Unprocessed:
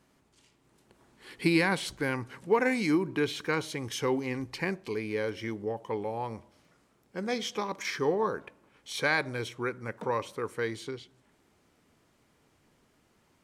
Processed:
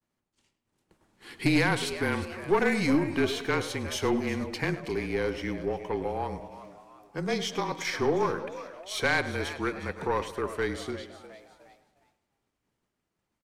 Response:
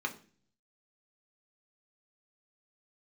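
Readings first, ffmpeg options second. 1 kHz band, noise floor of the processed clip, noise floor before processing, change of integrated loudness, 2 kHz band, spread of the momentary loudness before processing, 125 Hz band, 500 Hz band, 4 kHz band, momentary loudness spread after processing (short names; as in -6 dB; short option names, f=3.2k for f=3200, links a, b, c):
+2.0 dB, -83 dBFS, -68 dBFS, +2.0 dB, +2.0 dB, 11 LU, +3.5 dB, +1.5 dB, +2.5 dB, 13 LU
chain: -filter_complex "[0:a]afreqshift=-30,asplit=2[a][b];[b]asplit=4[c][d][e][f];[c]adelay=357,afreqshift=110,volume=-15dB[g];[d]adelay=714,afreqshift=220,volume=-21.9dB[h];[e]adelay=1071,afreqshift=330,volume=-28.9dB[i];[f]adelay=1428,afreqshift=440,volume=-35.8dB[j];[g][h][i][j]amix=inputs=4:normalize=0[k];[a][k]amix=inputs=2:normalize=0,aeval=exprs='(tanh(8.91*val(0)+0.35)-tanh(0.35))/8.91':c=same,agate=range=-33dB:threshold=-56dB:ratio=3:detection=peak,asplit=2[l][m];[m]adelay=104,lowpass=f=4.8k:p=1,volume=-14dB,asplit=2[n][o];[o]adelay=104,lowpass=f=4.8k:p=1,volume=0.49,asplit=2[p][q];[q]adelay=104,lowpass=f=4.8k:p=1,volume=0.49,asplit=2[r][s];[s]adelay=104,lowpass=f=4.8k:p=1,volume=0.49,asplit=2[t][u];[u]adelay=104,lowpass=f=4.8k:p=1,volume=0.49[v];[n][p][r][t][v]amix=inputs=5:normalize=0[w];[l][w]amix=inputs=2:normalize=0,volume=3.5dB"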